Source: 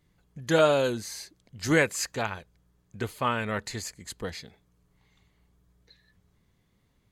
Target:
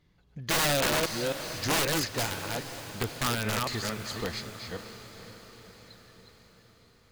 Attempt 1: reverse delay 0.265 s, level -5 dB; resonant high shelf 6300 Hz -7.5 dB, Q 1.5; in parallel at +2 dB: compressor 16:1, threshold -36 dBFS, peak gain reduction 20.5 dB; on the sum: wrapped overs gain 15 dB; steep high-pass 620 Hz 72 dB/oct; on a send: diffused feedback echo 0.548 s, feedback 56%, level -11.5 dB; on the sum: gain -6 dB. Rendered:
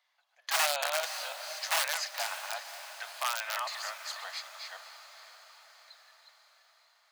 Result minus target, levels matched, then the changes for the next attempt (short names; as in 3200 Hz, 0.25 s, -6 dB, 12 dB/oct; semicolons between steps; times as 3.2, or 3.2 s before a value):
compressor: peak gain reduction +9 dB; 500 Hz band -4.5 dB
change: compressor 16:1, threshold -26.5 dBFS, peak gain reduction 11.5 dB; remove: steep high-pass 620 Hz 72 dB/oct